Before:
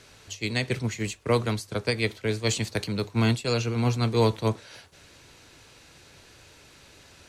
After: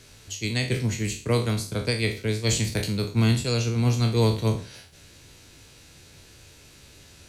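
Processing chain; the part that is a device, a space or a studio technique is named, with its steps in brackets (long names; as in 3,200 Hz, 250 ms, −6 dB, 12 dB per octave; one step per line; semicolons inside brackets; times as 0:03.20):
peak hold with a decay on every bin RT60 0.41 s
smiley-face EQ (low-shelf EQ 160 Hz +5.5 dB; parametric band 1,000 Hz −5 dB 2.2 octaves; high-shelf EQ 9,300 Hz +7 dB)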